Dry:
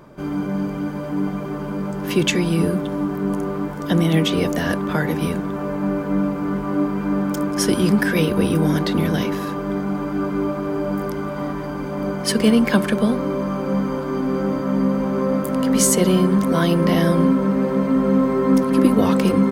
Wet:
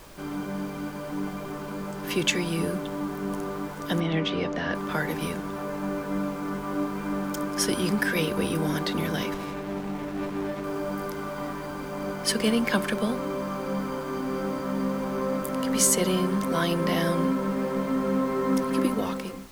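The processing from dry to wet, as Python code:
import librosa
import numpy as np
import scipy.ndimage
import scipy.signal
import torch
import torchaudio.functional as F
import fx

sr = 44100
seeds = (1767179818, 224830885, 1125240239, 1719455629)

y = fx.fade_out_tail(x, sr, length_s=0.74)
y = fx.low_shelf(y, sr, hz=470.0, db=-8.0)
y = fx.dmg_noise_colour(y, sr, seeds[0], colour='pink', level_db=-46.0)
y = fx.air_absorb(y, sr, metres=170.0, at=(4.0, 4.75))
y = fx.running_max(y, sr, window=17, at=(9.34, 10.64))
y = y * librosa.db_to_amplitude(-3.0)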